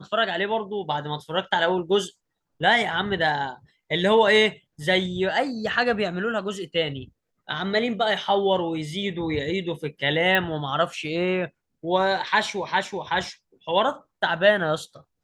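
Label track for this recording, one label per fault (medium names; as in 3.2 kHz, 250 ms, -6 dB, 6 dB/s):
10.350000	10.350000	pop -9 dBFS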